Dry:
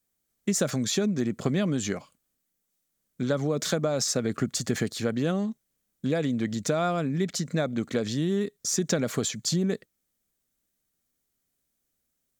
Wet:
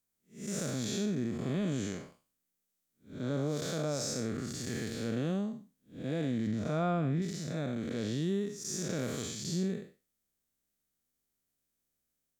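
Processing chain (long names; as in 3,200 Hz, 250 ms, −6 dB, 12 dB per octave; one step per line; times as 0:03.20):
spectrum smeared in time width 193 ms
0:06.47–0:07.22: bass and treble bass +4 dB, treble −10 dB
level −3.5 dB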